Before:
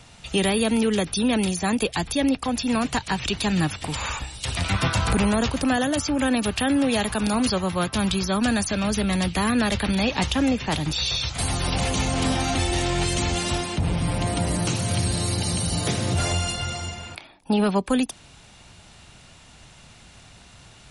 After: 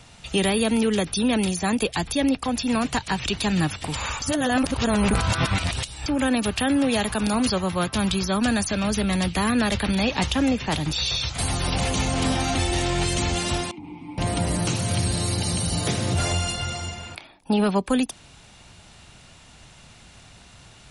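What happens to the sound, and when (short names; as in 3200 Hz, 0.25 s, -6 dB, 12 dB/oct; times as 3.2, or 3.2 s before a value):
4.22–6.06 reverse
13.71–14.18 vowel filter u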